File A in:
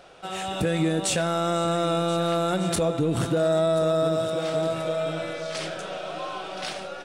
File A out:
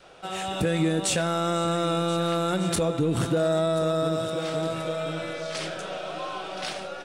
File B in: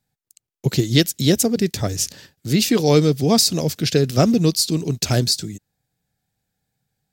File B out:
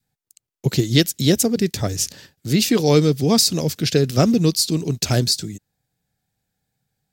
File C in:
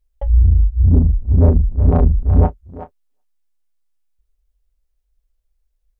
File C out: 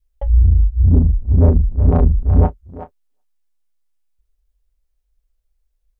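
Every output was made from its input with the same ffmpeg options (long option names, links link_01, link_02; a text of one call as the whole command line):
ffmpeg -i in.wav -af "adynamicequalizer=threshold=0.0158:dfrequency=670:dqfactor=3.3:tfrequency=670:tqfactor=3.3:attack=5:release=100:ratio=0.375:range=2.5:mode=cutabove:tftype=bell" out.wav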